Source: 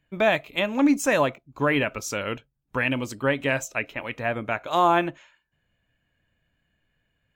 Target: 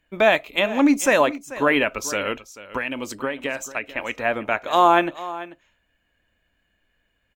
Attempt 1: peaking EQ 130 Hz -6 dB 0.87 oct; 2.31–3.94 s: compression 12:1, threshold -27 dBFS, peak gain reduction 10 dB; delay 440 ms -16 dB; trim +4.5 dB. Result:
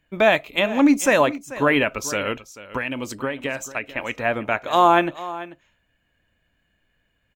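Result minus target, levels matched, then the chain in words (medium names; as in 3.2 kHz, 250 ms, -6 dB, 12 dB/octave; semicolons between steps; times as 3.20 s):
125 Hz band +5.0 dB
peaking EQ 130 Hz -14 dB 0.87 oct; 2.31–3.94 s: compression 12:1, threshold -27 dBFS, peak gain reduction 10 dB; delay 440 ms -16 dB; trim +4.5 dB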